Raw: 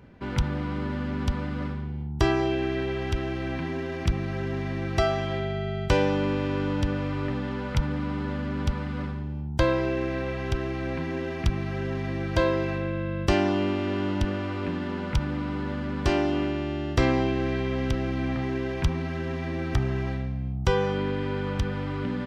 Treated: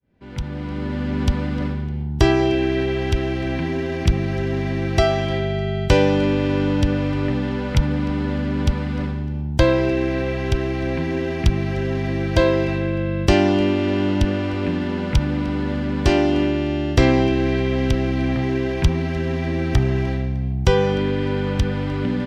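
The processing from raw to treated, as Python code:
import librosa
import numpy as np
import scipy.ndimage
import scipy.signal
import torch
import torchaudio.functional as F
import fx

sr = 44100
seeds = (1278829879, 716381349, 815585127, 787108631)

y = fx.fade_in_head(x, sr, length_s=1.2)
y = fx.peak_eq(y, sr, hz=1200.0, db=-6.0, octaves=0.82)
y = fx.echo_feedback(y, sr, ms=303, feedback_pct=36, wet_db=-21.5)
y = F.gain(torch.from_numpy(y), 7.5).numpy()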